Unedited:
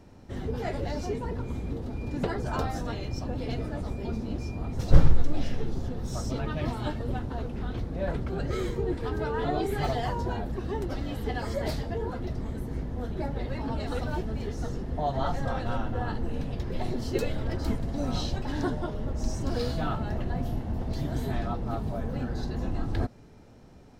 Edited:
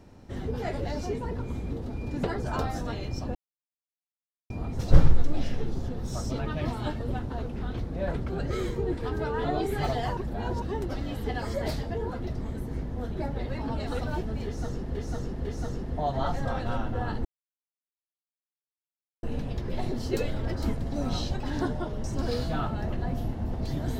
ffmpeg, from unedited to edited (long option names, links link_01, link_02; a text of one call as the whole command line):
ffmpeg -i in.wav -filter_complex "[0:a]asplit=9[link_01][link_02][link_03][link_04][link_05][link_06][link_07][link_08][link_09];[link_01]atrim=end=3.35,asetpts=PTS-STARTPTS,afade=type=out:start_time=3.346:duration=0.004:curve=hsin[link_10];[link_02]atrim=start=3.35:end=4.5,asetpts=PTS-STARTPTS,volume=0[link_11];[link_03]atrim=start=4.5:end=10.172,asetpts=PTS-STARTPTS,afade=type=in:duration=0.004:curve=hsin[link_12];[link_04]atrim=start=10.168:end=10.622,asetpts=PTS-STARTPTS,areverse[link_13];[link_05]atrim=start=10.618:end=14.952[link_14];[link_06]atrim=start=14.448:end=14.952[link_15];[link_07]atrim=start=14.448:end=16.25,asetpts=PTS-STARTPTS,afade=type=out:start_time=1.798:duration=0.004:curve=hsin,apad=pad_dur=1.98[link_16];[link_08]atrim=start=16.25:end=19.062,asetpts=PTS-STARTPTS,afade=type=in:duration=0.004:curve=hsin[link_17];[link_09]atrim=start=19.318[link_18];[link_10][link_11][link_12]concat=n=3:v=0:a=1[link_19];[link_19][link_13]acrossfade=duration=0.004:curve1=hsin:curve2=hsin[link_20];[link_20][link_14]acrossfade=duration=0.004:curve1=hsin:curve2=hsin[link_21];[link_21][link_15]acrossfade=duration=0.004:curve1=hsin:curve2=hsin[link_22];[link_16][link_17]concat=n=2:v=0:a=1[link_23];[link_22][link_23]acrossfade=duration=0.004:curve1=hsin:curve2=hsin[link_24];[link_24][link_18]acrossfade=duration=0.004:curve1=hsin:curve2=hsin" out.wav